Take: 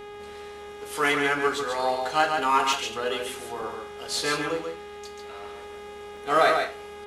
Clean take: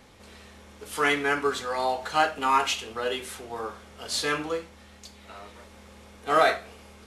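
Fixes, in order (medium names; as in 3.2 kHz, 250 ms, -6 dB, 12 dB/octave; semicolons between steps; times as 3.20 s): de-hum 412.3 Hz, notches 9; interpolate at 2.73/3.62/6.17 s, 1.4 ms; inverse comb 140 ms -5 dB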